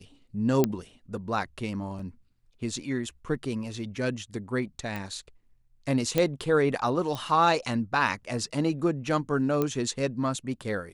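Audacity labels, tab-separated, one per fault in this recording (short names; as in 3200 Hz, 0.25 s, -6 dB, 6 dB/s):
0.640000	0.640000	pop -9 dBFS
1.990000	1.990000	gap 3.8 ms
4.960000	4.960000	pop
6.180000	6.180000	pop -10 dBFS
7.150000	7.150000	pop -20 dBFS
9.620000	9.620000	pop -14 dBFS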